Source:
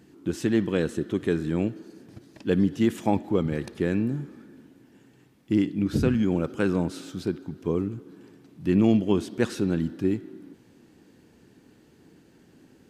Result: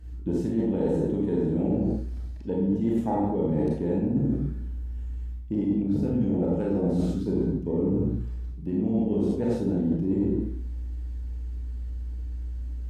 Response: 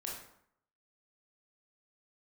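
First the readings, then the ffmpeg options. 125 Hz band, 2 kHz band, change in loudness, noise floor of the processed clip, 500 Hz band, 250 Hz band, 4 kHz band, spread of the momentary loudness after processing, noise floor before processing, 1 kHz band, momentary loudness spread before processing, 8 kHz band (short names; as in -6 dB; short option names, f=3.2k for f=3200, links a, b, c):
+1.5 dB, under -10 dB, -1.5 dB, -35 dBFS, 0.0 dB, +0.5 dB, under -10 dB, 11 LU, -58 dBFS, -0.5 dB, 10 LU, n/a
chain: -filter_complex "[0:a]asplit=2[a][b];[b]alimiter=limit=-16dB:level=0:latency=1:release=89,volume=-1.5dB[c];[a][c]amix=inputs=2:normalize=0,lowshelf=f=110:g=-4.5,aeval=exprs='val(0)+0.00708*(sin(2*PI*60*n/s)+sin(2*PI*2*60*n/s)/2+sin(2*PI*3*60*n/s)/3+sin(2*PI*4*60*n/s)/4+sin(2*PI*5*60*n/s)/5)':c=same,equalizer=f=360:t=o:w=0.25:g=-6.5,afwtdn=0.0562[d];[1:a]atrim=start_sample=2205,afade=t=out:st=0.31:d=0.01,atrim=end_sample=14112,asetrate=33957,aresample=44100[e];[d][e]afir=irnorm=-1:irlink=0,areverse,acompressor=threshold=-30dB:ratio=12,areverse,volume=8.5dB"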